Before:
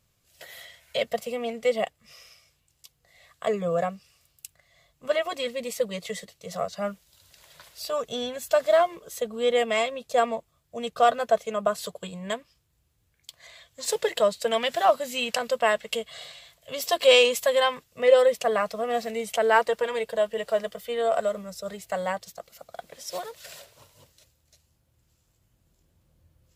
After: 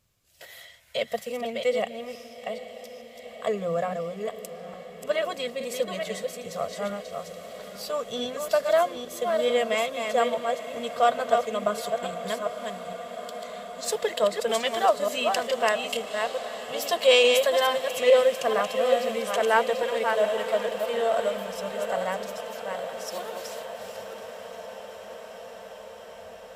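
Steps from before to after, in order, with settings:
delay that plays each chunk backwards 431 ms, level −5 dB
mains-hum notches 60/120/180 Hz
feedback delay with all-pass diffusion 900 ms, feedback 78%, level −13.5 dB
level −1.5 dB

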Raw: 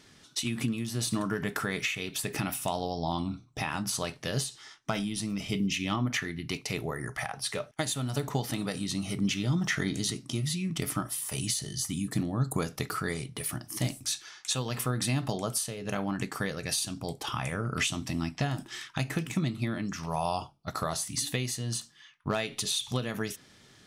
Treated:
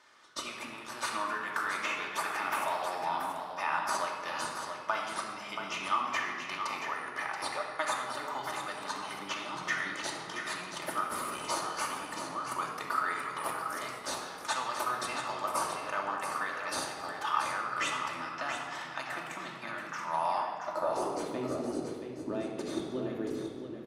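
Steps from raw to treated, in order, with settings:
RIAA equalisation recording
in parallel at −11 dB: sample-and-hold swept by an LFO 30×, swing 160% 0.74 Hz
on the sum: band-pass filter sweep 1,100 Hz → 330 Hz, 0:20.37–0:21.29
on a send: single-tap delay 679 ms −7.5 dB
on the sum: rectangular room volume 3,300 cubic metres, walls mixed, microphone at 2.6 metres
level +3 dB

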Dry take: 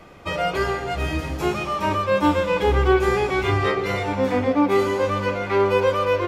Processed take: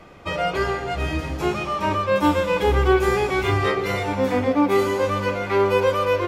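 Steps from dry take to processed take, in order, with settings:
high-shelf EQ 9,900 Hz −5.5 dB, from 0:02.16 +8.5 dB

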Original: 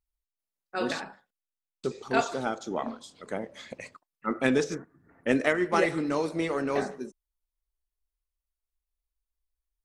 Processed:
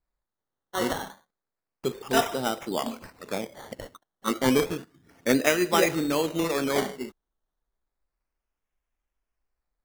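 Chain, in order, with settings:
sample-and-hold swept by an LFO 14×, swing 60% 0.31 Hz
level +2.5 dB

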